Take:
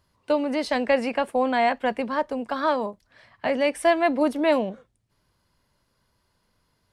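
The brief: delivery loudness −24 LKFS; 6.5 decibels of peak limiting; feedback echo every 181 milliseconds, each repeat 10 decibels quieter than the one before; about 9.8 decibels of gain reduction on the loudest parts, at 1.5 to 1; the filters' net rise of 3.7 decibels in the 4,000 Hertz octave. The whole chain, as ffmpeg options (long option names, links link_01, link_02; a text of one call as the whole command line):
ffmpeg -i in.wav -af "equalizer=frequency=4000:width_type=o:gain=5,acompressor=threshold=-43dB:ratio=1.5,alimiter=limit=-23.5dB:level=0:latency=1,aecho=1:1:181|362|543|724:0.316|0.101|0.0324|0.0104,volume=10dB" out.wav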